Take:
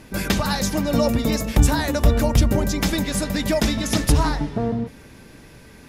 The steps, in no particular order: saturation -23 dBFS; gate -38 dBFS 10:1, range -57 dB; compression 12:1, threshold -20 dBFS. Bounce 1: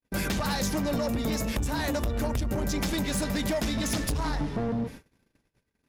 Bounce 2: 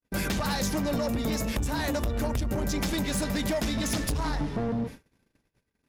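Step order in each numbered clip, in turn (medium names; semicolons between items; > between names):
compression > gate > saturation; compression > saturation > gate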